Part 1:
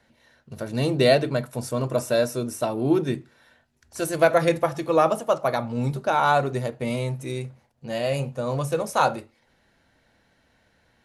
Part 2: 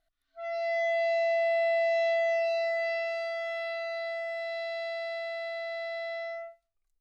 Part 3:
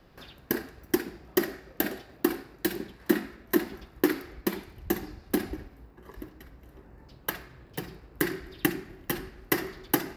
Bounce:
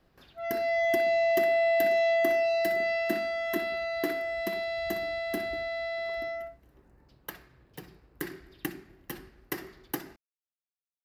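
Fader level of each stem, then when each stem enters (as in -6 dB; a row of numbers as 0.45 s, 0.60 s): mute, +2.0 dB, -9.0 dB; mute, 0.00 s, 0.00 s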